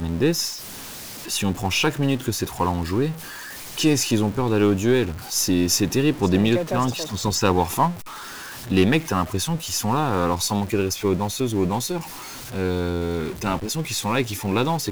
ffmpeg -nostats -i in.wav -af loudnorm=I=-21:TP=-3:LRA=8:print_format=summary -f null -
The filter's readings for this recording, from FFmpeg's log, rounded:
Input Integrated:    -22.7 LUFS
Input True Peak:      -6.8 dBTP
Input LRA:             4.0 LU
Input Threshold:     -33.1 LUFS